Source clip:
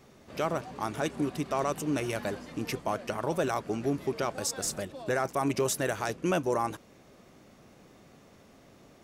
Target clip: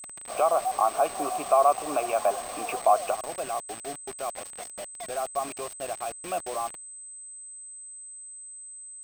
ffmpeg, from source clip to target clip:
ffmpeg -i in.wav -filter_complex "[0:a]asetnsamples=nb_out_samples=441:pad=0,asendcmd='3.15 equalizer g -2.5',equalizer=frequency=890:width=0.43:gain=14,alimiter=limit=-11.5dB:level=0:latency=1:release=233,asplit=3[link_01][link_02][link_03];[link_01]bandpass=frequency=730:width_type=q:width=8,volume=0dB[link_04];[link_02]bandpass=frequency=1090:width_type=q:width=8,volume=-6dB[link_05];[link_03]bandpass=frequency=2440:width_type=q:width=8,volume=-9dB[link_06];[link_04][link_05][link_06]amix=inputs=3:normalize=0,acrusher=bits=7:mix=0:aa=0.000001,aeval=exprs='val(0)+0.00355*sin(2*PI*8200*n/s)':channel_layout=same,volume=8.5dB" out.wav

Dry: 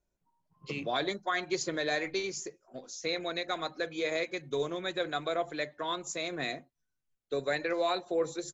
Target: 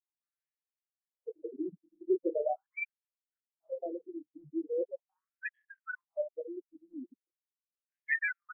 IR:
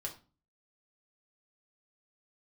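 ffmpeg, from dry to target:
-filter_complex "[0:a]aeval=exprs='val(0)+0.5*0.00794*sgn(val(0))':channel_layout=same,lowpass=frequency=3800:poles=1,acrusher=bits=8:dc=4:mix=0:aa=0.000001,asplit=2[link_01][link_02];[link_02]adelay=27,volume=-7.5dB[link_03];[link_01][link_03]amix=inputs=2:normalize=0,acrossover=split=190[link_04][link_05];[link_05]adelay=580[link_06];[link_04][link_06]amix=inputs=2:normalize=0,aeval=exprs='0.141*(cos(1*acos(clip(val(0)/0.141,-1,1)))-cos(1*PI/2))+0.00316*(cos(7*acos(clip(val(0)/0.141,-1,1)))-cos(7*PI/2))':channel_layout=same,asuperstop=centerf=1000:order=4:qfactor=1.4,asplit=2[link_07][link_08];[1:a]atrim=start_sample=2205[link_09];[link_08][link_09]afir=irnorm=-1:irlink=0,volume=-18dB[link_10];[link_07][link_10]amix=inputs=2:normalize=0,adynamicequalizer=threshold=0.00224:dfrequency=1500:dqfactor=6.3:tfrequency=1500:tqfactor=6.3:attack=5:release=100:ratio=0.375:range=3:mode=boostabove:tftype=bell,afftfilt=real='re*gte(hypot(re,im),0.0794)':imag='im*gte(hypot(re,im),0.0794)':win_size=1024:overlap=0.75,highshelf=frequency=2000:gain=7,afftfilt=real='re*between(b*sr/1024,220*pow(2400/220,0.5+0.5*sin(2*PI*0.4*pts/sr))/1.41,220*pow(2400/220,0.5+0.5*sin(2*PI*0.4*pts/sr))*1.41)':imag='im*between(b*sr/1024,220*pow(2400/220,0.5+0.5*sin(2*PI*0.4*pts/sr))/1.41,220*pow(2400/220,0.5+0.5*sin(2*PI*0.4*pts/sr))*1.41)':win_size=1024:overlap=0.75,volume=3.5dB"

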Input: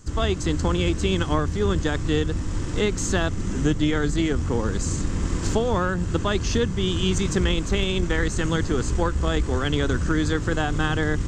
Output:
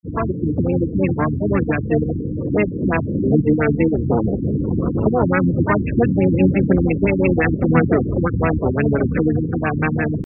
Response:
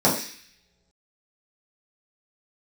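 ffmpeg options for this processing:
-filter_complex "[0:a]acrossover=split=230|3000[link_01][link_02][link_03];[link_02]acompressor=threshold=-32dB:ratio=2[link_04];[link_01][link_04][link_03]amix=inputs=3:normalize=0,asplit=2[link_05][link_06];[link_06]asetrate=66075,aresample=44100,atempo=0.66742,volume=-5dB[link_07];[link_05][link_07]amix=inputs=2:normalize=0,crystalizer=i=4:c=0,atempo=1.1,highpass=140,afwtdn=0.0224,adynamicequalizer=threshold=0.0112:dfrequency=5300:dqfactor=2.8:tfrequency=5300:tqfactor=2.8:attack=5:release=100:ratio=0.375:range=2.5:mode=cutabove:tftype=bell,dynaudnorm=framelen=360:gausssize=11:maxgain=14dB,afftfilt=real='re*gte(hypot(re,im),0.0355)':imag='im*gte(hypot(re,im),0.0355)':win_size=1024:overlap=0.75,alimiter=level_in=5dB:limit=-1dB:release=50:level=0:latency=1,afftfilt=real='re*lt(b*sr/1024,330*pow(2800/330,0.5+0.5*sin(2*PI*5.8*pts/sr)))':imag='im*lt(b*sr/1024,330*pow(2800/330,0.5+0.5*sin(2*PI*5.8*pts/sr)))':win_size=1024:overlap=0.75,volume=3dB"

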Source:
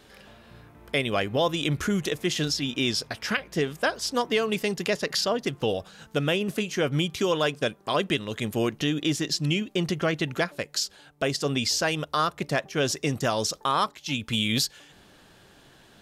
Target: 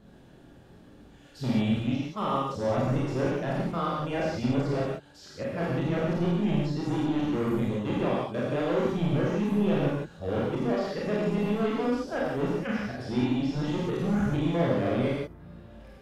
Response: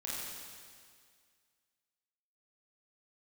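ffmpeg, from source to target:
-filter_complex "[0:a]areverse,tiltshelf=frequency=900:gain=9,acrossover=split=4900[link_01][link_02];[link_01]asoftclip=type=hard:threshold=-19.5dB[link_03];[link_03][link_02]amix=inputs=2:normalize=0[link_04];[1:a]atrim=start_sample=2205,afade=type=out:start_time=0.24:duration=0.01,atrim=end_sample=11025[link_05];[link_04][link_05]afir=irnorm=-1:irlink=0,acrossover=split=3500[link_06][link_07];[link_07]acompressor=threshold=-51dB:ratio=4:attack=1:release=60[link_08];[link_06][link_08]amix=inputs=2:normalize=0,volume=-3dB"

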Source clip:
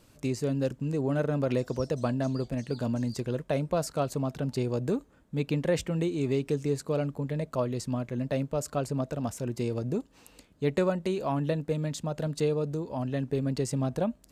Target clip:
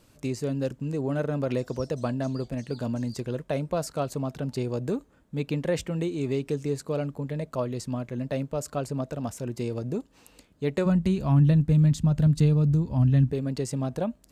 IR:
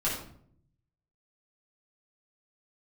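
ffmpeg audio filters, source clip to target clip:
-filter_complex "[0:a]asplit=3[link_01][link_02][link_03];[link_01]afade=type=out:start_time=10.85:duration=0.02[link_04];[link_02]asubboost=boost=11:cutoff=140,afade=type=in:start_time=10.85:duration=0.02,afade=type=out:start_time=13.31:duration=0.02[link_05];[link_03]afade=type=in:start_time=13.31:duration=0.02[link_06];[link_04][link_05][link_06]amix=inputs=3:normalize=0"

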